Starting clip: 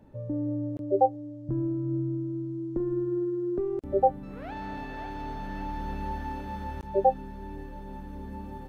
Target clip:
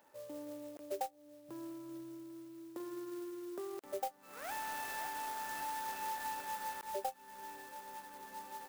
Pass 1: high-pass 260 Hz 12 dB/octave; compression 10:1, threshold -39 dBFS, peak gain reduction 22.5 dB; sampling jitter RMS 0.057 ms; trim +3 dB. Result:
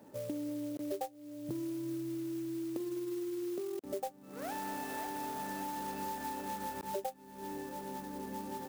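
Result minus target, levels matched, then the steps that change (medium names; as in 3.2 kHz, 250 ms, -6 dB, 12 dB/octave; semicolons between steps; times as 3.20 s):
250 Hz band +6.5 dB
change: high-pass 990 Hz 12 dB/octave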